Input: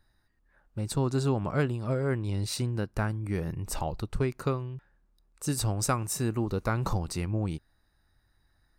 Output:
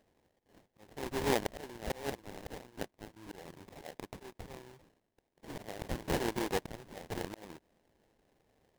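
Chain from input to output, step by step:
high-pass filter 500 Hz 12 dB per octave, from 0:02.10 1,200 Hz, from 0:03.16 520 Hz
volume swells 399 ms
sample-rate reduction 1,300 Hz, jitter 20%
level +4.5 dB

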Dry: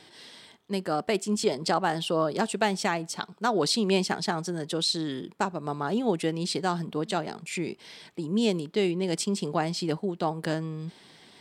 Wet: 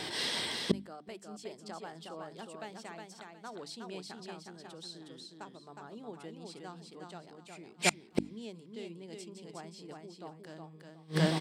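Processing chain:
on a send: repeating echo 363 ms, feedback 26%, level −4 dB
on the sum: gate with flip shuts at −27 dBFS, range −34 dB
mains-hum notches 50/100/150/200/250/300 Hz
level +14 dB

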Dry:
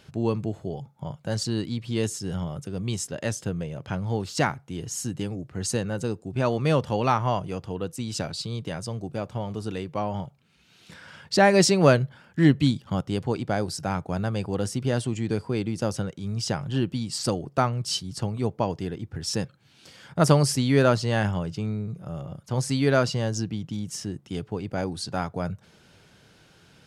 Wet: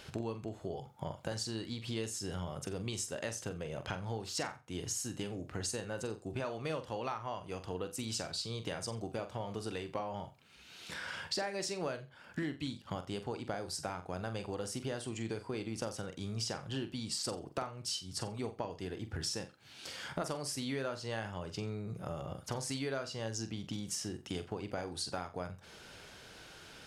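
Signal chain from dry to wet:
parametric band 150 Hz −10 dB 1.8 octaves
downward compressor 10 to 1, threshold −40 dBFS, peak gain reduction 25 dB
flutter between parallel walls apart 7.6 metres, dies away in 0.27 s
level +4.5 dB

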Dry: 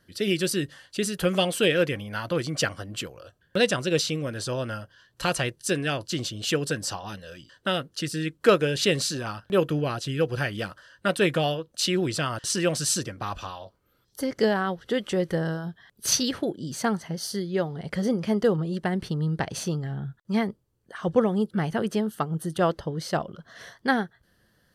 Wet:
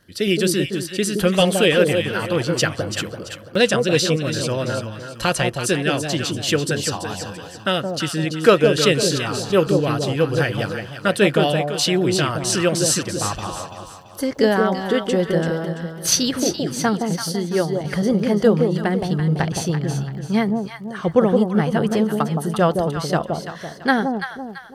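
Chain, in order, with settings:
surface crackle 41 per second −48 dBFS
delay that swaps between a low-pass and a high-pass 168 ms, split 870 Hz, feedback 60%, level −3.5 dB
level +5.5 dB

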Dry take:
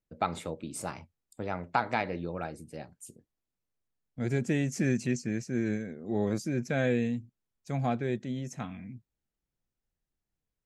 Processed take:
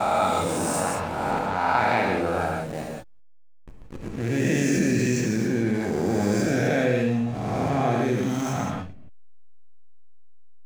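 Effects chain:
peak hold with a rise ahead of every peak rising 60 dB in 2.35 s
hum removal 174.2 Hz, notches 40
downward expander −32 dBFS
volume swells 365 ms
slack as between gear wheels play −38 dBFS
reverb whose tail is shaped and stops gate 200 ms flat, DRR 1 dB
envelope flattener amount 50%

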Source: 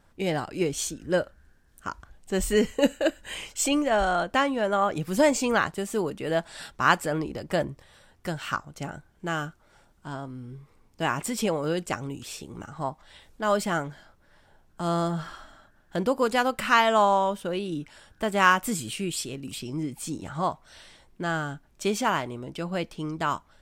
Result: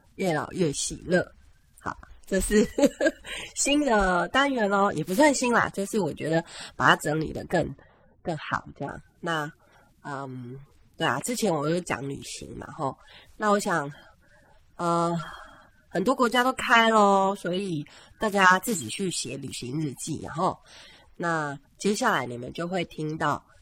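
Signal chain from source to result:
spectral magnitudes quantised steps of 30 dB
0:07.53–0:08.89: low-pass that shuts in the quiet parts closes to 560 Hz, open at −24.5 dBFS
level +2 dB

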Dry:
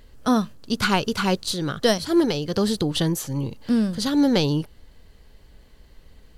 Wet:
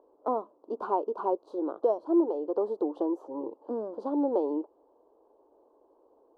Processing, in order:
elliptic band-pass filter 320–1,000 Hz, stop band 40 dB
downward compressor 1.5 to 1, threshold −32 dBFS, peak gain reduction 7 dB
level +1.5 dB

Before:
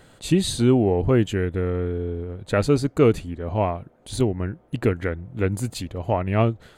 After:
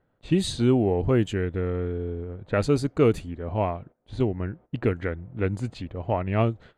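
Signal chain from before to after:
noise gate −43 dBFS, range −15 dB
low-pass that shuts in the quiet parts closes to 1,500 Hz, open at −14.5 dBFS
level −3 dB

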